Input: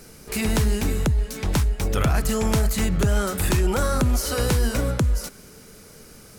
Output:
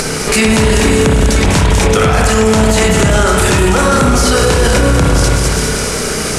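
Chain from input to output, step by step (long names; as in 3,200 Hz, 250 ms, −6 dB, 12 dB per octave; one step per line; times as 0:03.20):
low-pass filter 9,800 Hz 24 dB per octave
low-shelf EQ 280 Hz −7.5 dB
upward compression, threshold −34 dBFS
on a send: delay with a high-pass on its return 199 ms, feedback 63%, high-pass 5,600 Hz, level −4 dB
on the sum: spring reverb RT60 1.8 s, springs 32/57 ms, chirp 75 ms, DRR −1 dB
boost into a limiter +24 dB
level −1 dB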